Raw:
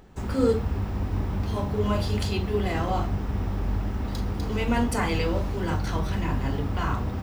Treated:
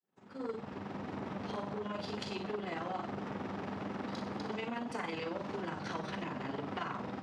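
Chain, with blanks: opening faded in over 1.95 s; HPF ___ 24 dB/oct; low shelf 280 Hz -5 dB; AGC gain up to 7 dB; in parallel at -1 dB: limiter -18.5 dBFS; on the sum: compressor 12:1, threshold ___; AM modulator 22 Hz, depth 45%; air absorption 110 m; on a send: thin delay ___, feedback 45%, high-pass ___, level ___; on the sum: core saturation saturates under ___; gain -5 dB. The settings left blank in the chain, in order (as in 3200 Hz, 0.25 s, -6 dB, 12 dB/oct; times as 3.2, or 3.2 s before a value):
150 Hz, -25 dBFS, 61 ms, 4000 Hz, -8 dB, 870 Hz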